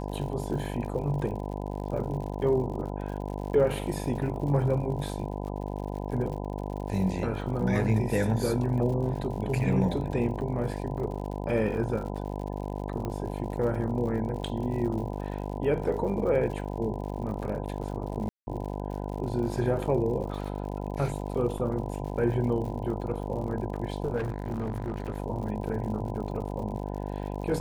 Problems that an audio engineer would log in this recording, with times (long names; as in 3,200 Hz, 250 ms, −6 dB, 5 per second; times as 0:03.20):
mains buzz 50 Hz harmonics 20 −34 dBFS
surface crackle 83 per second −38 dBFS
0:13.05: click −21 dBFS
0:18.29–0:18.47: drop-out 180 ms
0:21.58: drop-out 3.5 ms
0:24.16–0:25.18: clipping −26.5 dBFS